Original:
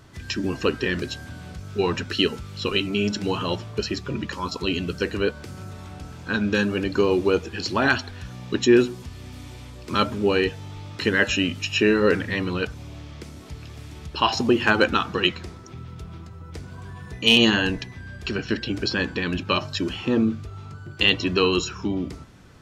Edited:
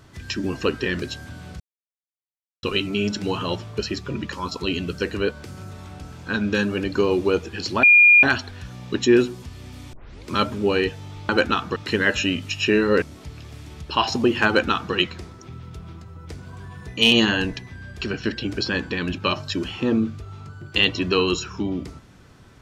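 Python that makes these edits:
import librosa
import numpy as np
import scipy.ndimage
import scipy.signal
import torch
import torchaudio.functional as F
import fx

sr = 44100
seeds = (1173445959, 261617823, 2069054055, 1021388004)

y = fx.edit(x, sr, fx.silence(start_s=1.6, length_s=1.03),
    fx.insert_tone(at_s=7.83, length_s=0.4, hz=2420.0, db=-8.5),
    fx.tape_start(start_s=9.53, length_s=0.34),
    fx.cut(start_s=12.15, length_s=1.12),
    fx.duplicate(start_s=14.72, length_s=0.47, to_s=10.89), tone=tone)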